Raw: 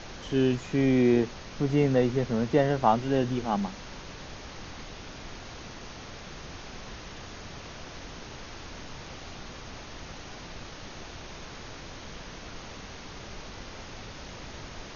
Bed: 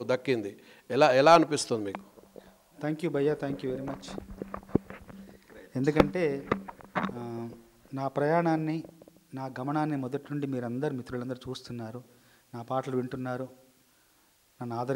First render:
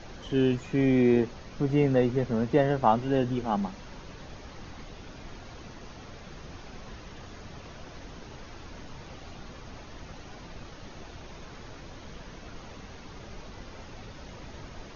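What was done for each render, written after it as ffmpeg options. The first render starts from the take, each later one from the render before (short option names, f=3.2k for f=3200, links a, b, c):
-af "afftdn=nr=7:nf=-43"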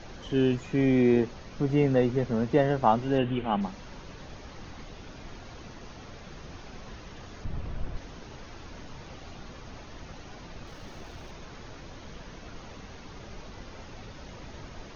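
-filter_complex "[0:a]asettb=1/sr,asplit=3[a][b][c];[a]atrim=end=3.184[d];[b]atrim=start=3.18:end=3.61,asetpts=PTS-STARTPTS,afade=t=in:d=0.004:c=qsin,afade=t=out:st=0.426:d=0.004:c=qsin,highshelf=f=4k:t=q:w=3:g=-11.5[e];[c]atrim=start=3.606[f];[d][e]acrossfade=d=0.004:c1=hsin:c2=qsin[g];[g][f]acrossfade=d=0.004:c1=qsin:c2=hsin,asettb=1/sr,asplit=3[h][i][j];[h]atrim=end=7.444[k];[i]atrim=start=7.44:end=7.97,asetpts=PTS-STARTPTS,afade=t=in:d=0.004:c=qsin,afade=t=out:st=0.526:d=0.004:c=qsin,aemphasis=mode=reproduction:type=bsi[l];[j]atrim=start=7.966[m];[k][l]acrossfade=d=0.004:c1=hsin:c2=qsin[n];[n][m]acrossfade=d=0.004:c1=qsin:c2=hsin,asettb=1/sr,asplit=3[o][p][q];[o]atrim=end=10.674[r];[p]atrim=start=10.67:end=11.31,asetpts=PTS-STARTPTS,afade=t=in:d=0.004:c=qsin,afade=t=out:st=0.636:d=0.004:c=qsin,aeval=exprs='val(0)+0.5*0.00141*sgn(val(0))':c=same[s];[q]atrim=start=11.306[t];[r][s]acrossfade=d=0.004:c1=hsin:c2=qsin[u];[u][t]acrossfade=d=0.004:c1=qsin:c2=hsin"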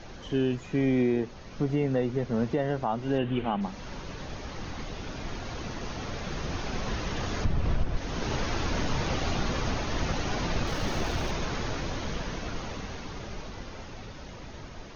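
-af "dynaudnorm=f=410:g=17:m=16dB,alimiter=limit=-17dB:level=0:latency=1:release=347"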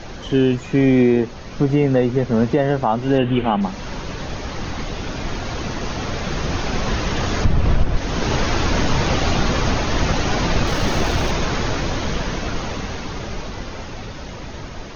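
-af "volume=10.5dB"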